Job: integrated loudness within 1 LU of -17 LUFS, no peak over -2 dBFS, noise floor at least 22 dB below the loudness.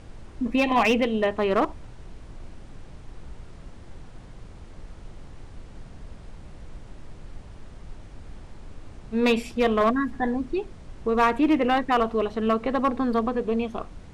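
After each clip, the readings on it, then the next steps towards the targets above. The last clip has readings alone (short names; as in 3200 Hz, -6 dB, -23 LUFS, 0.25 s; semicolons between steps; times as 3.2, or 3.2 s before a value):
clipped 0.5%; flat tops at -14.0 dBFS; noise floor -44 dBFS; noise floor target -46 dBFS; loudness -24.0 LUFS; peak -14.0 dBFS; loudness target -17.0 LUFS
-> clip repair -14 dBFS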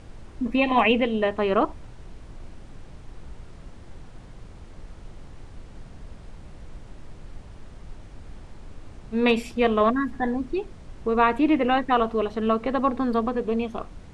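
clipped 0.0%; noise floor -44 dBFS; noise floor target -46 dBFS
-> noise print and reduce 6 dB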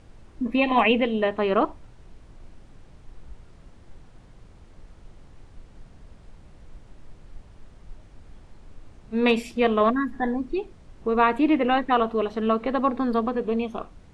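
noise floor -50 dBFS; loudness -23.5 LUFS; peak -7.5 dBFS; loudness target -17.0 LUFS
-> gain +6.5 dB; limiter -2 dBFS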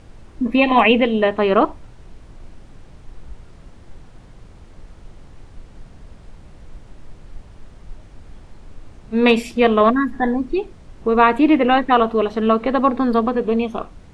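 loudness -17.0 LUFS; peak -2.0 dBFS; noise floor -44 dBFS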